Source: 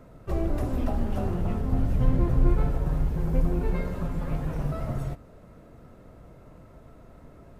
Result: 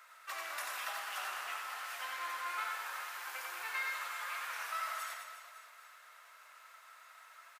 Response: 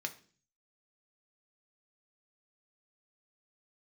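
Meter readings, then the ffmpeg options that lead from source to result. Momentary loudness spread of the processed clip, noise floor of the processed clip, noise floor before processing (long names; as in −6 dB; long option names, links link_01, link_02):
18 LU, −59 dBFS, −51 dBFS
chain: -af "highpass=frequency=1300:width=0.5412,highpass=frequency=1300:width=1.3066,aecho=1:1:90|207|359.1|556.8|813.9:0.631|0.398|0.251|0.158|0.1,volume=7dB"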